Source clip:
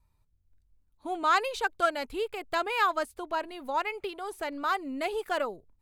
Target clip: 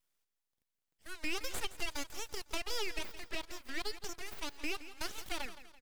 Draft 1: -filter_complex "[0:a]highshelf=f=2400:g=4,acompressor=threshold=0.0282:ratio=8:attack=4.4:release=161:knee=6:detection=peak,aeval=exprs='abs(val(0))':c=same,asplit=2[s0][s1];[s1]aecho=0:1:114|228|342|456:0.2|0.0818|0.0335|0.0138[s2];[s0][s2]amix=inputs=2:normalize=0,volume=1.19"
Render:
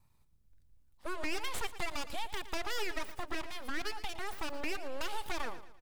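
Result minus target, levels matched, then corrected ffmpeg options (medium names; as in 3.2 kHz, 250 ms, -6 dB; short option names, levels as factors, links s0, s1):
echo 54 ms early; 1 kHz band +5.0 dB
-filter_complex "[0:a]highpass=1300,highshelf=f=2400:g=4,acompressor=threshold=0.0282:ratio=8:attack=4.4:release=161:knee=6:detection=peak,aeval=exprs='abs(val(0))':c=same,asplit=2[s0][s1];[s1]aecho=0:1:168|336|504|672:0.2|0.0818|0.0335|0.0138[s2];[s0][s2]amix=inputs=2:normalize=0,volume=1.19"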